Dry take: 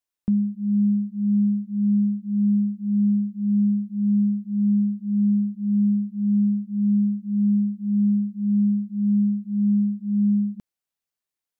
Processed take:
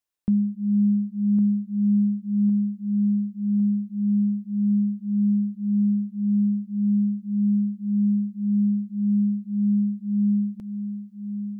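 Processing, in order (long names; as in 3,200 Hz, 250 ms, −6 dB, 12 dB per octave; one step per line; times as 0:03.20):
on a send: feedback echo with a high-pass in the loop 1,107 ms, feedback 63%, high-pass 160 Hz, level −7 dB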